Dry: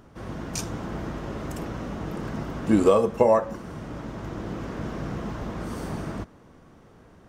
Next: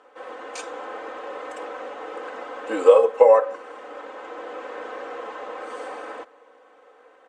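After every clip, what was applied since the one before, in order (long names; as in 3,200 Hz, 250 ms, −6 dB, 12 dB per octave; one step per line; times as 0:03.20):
elliptic band-pass filter 440–7,700 Hz, stop band 40 dB
parametric band 5,700 Hz −13.5 dB 0.95 octaves
comb filter 3.9 ms, depth 93%
level +2.5 dB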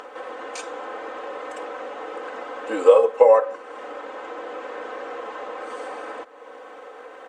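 upward compression, threshold −29 dBFS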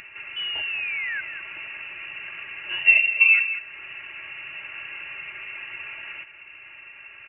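sound drawn into the spectrogram rise, 0:00.36–0:01.21, 230–1,700 Hz −26 dBFS
single-tap delay 195 ms −11 dB
voice inversion scrambler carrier 3,200 Hz
level −3.5 dB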